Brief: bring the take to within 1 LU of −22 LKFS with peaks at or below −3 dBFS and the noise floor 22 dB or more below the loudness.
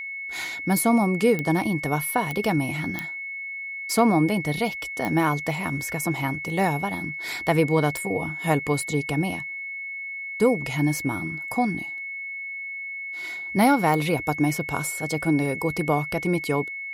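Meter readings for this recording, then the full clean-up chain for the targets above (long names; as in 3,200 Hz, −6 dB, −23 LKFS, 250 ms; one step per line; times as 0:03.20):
number of clicks 6; interfering tone 2,200 Hz; level of the tone −31 dBFS; integrated loudness −25.0 LKFS; sample peak −7.5 dBFS; target loudness −22.0 LKFS
→ click removal
notch filter 2,200 Hz, Q 30
level +3 dB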